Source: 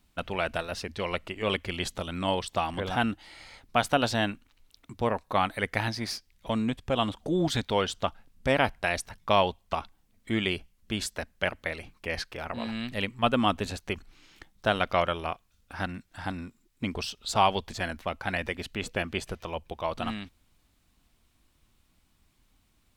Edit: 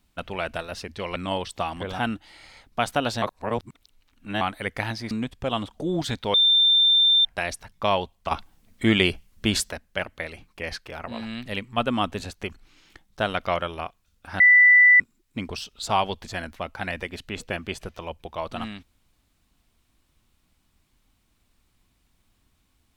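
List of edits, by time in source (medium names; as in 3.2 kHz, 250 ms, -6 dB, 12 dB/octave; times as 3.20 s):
1.16–2.13 s: delete
4.19–5.38 s: reverse
6.08–6.57 s: delete
7.80–8.71 s: bleep 3.58 kHz -14.5 dBFS
9.77–11.17 s: gain +8.5 dB
15.86–16.46 s: bleep 1.98 kHz -10.5 dBFS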